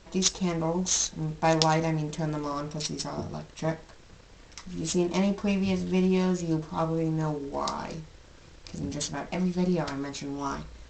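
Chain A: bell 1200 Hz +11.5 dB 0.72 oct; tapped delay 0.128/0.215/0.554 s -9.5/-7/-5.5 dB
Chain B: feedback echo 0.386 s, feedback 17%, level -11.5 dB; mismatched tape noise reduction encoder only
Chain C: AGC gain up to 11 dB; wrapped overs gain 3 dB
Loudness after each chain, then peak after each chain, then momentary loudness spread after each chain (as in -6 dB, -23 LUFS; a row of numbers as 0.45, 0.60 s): -25.5, -28.5, -19.5 LUFS; -2.0, -3.0, -3.0 dBFS; 12, 15, 12 LU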